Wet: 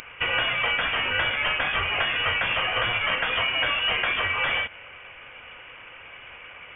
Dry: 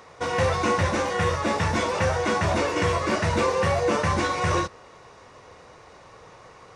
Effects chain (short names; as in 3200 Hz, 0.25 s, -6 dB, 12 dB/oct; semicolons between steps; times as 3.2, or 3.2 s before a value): tilt +4.5 dB/oct; compressor, threshold -25 dBFS, peak gain reduction 7 dB; inverted band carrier 3400 Hz; gain +5 dB